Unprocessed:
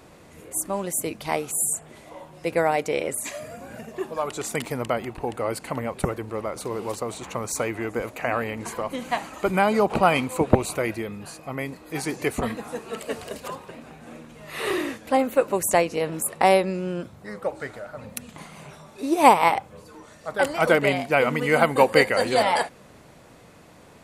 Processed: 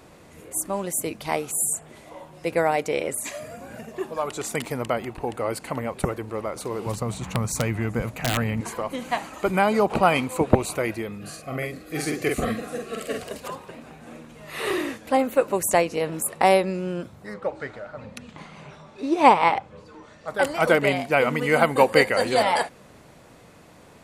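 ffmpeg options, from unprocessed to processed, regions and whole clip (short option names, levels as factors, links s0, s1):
-filter_complex "[0:a]asettb=1/sr,asplit=3[s0][s1][s2];[s0]atrim=end=6.864[s3];[s1]atrim=start=6.86:end=8.61,asetpts=PTS-STARTPTS,afade=t=in:d=0.004:c=qsin,afade=t=out:st=1.746:d=0.004:c=qsin,lowshelf=f=240:t=q:w=1.5:g=10,aeval=exprs='(mod(5.01*val(0)+1,2)-1)/5.01':c=same[s4];[s2]atrim=start=8.606[s5];[s3][s4]acrossfade=d=0.004:c1=hsin:c2=qsin[s6];[s6][s5]acrossfade=d=0.004:c1=qsin:c2=hsin,asettb=1/sr,asplit=3[s7][s8][s9];[s7]atrim=end=11.184[s10];[s8]atrim=start=11.18:end=13.23,asetpts=PTS-STARTPTS,afade=t=in:d=0.004:c=qsin,afade=t=out:st=2.046:d=0.004:c=qsin,asuperstop=centerf=920:order=8:qfactor=3.4,asplit=2[s11][s12];[s12]adelay=46,volume=0.708[s13];[s11][s13]amix=inputs=2:normalize=0,atrim=end_sample=90405[s14];[s9]atrim=start=13.226[s15];[s10][s14]acrossfade=d=0.004:c1=hsin:c2=qsin[s16];[s16][s15]acrossfade=d=0.004:c1=qsin:c2=hsin,asettb=1/sr,asplit=3[s17][s18][s19];[s17]atrim=end=17.344[s20];[s18]atrim=start=17.34:end=20.28,asetpts=PTS-STARTPTS,afade=t=in:d=0.004:c=qsin,afade=t=out:st=2.936:d=0.004:c=qsin,lowpass=4900,bandreject=f=690:w=20[s21];[s19]atrim=start=20.276[s22];[s20][s21]acrossfade=d=0.004:c1=hsin:c2=qsin[s23];[s23][s22]acrossfade=d=0.004:c1=qsin:c2=hsin"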